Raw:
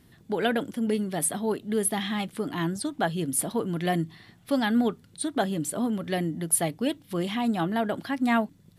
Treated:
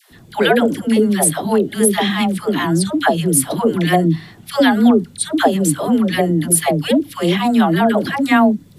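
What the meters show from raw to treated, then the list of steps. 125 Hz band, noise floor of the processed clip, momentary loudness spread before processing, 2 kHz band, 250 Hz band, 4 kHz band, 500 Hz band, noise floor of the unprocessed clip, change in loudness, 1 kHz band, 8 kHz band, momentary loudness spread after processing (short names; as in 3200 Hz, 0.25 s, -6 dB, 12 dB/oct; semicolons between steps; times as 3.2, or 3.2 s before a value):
+12.5 dB, -43 dBFS, 6 LU, +12.0 dB, +12.5 dB, +12.5 dB, +12.5 dB, -57 dBFS, +12.0 dB, +12.0 dB, +10.5 dB, 5 LU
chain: dispersion lows, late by 0.117 s, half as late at 620 Hz; maximiser +13.5 dB; gain -1 dB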